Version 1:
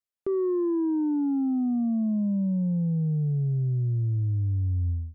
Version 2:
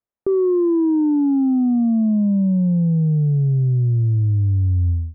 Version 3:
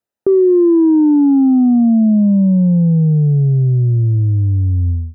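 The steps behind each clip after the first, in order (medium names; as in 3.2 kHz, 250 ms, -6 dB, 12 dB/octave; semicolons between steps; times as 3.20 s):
low-pass 1.1 kHz 12 dB/octave; trim +8.5 dB
comb of notches 1.1 kHz; trim +7 dB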